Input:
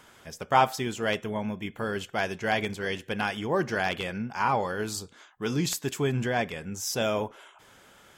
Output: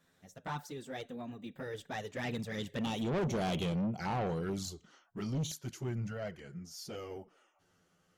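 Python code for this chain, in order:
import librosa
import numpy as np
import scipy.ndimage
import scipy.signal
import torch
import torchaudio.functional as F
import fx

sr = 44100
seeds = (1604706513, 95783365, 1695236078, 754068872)

y = fx.doppler_pass(x, sr, speed_mps=40, closest_m=22.0, pass_at_s=3.42)
y = fx.graphic_eq_15(y, sr, hz=(160, 1000, 2500, 10000), db=(8, -6, -6, -4))
y = fx.env_flanger(y, sr, rest_ms=11.9, full_db=-31.0)
y = 10.0 ** (-34.5 / 20.0) * np.tanh(y / 10.0 ** (-34.5 / 20.0))
y = y * 10.0 ** (4.5 / 20.0)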